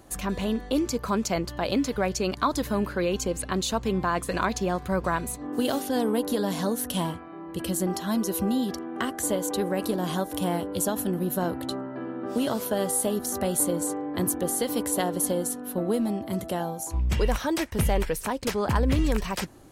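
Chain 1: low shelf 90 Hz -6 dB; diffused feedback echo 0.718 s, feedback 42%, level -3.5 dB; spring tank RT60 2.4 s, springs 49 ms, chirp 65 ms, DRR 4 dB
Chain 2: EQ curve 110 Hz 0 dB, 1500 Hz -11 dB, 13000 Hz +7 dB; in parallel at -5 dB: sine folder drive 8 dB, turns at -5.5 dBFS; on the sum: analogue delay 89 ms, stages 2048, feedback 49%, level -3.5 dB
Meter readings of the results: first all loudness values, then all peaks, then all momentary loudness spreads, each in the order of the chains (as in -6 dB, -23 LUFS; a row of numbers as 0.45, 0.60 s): -25.0, -17.5 LUFS; -10.0, -2.0 dBFS; 3, 7 LU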